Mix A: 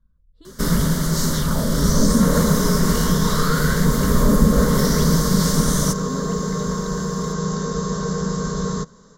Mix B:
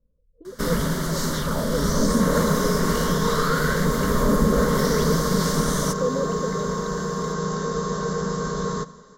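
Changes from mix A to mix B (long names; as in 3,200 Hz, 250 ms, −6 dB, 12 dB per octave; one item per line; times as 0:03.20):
speech: add low-pass with resonance 500 Hz, resonance Q 6.1
second sound: send on
master: add bass and treble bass −7 dB, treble −6 dB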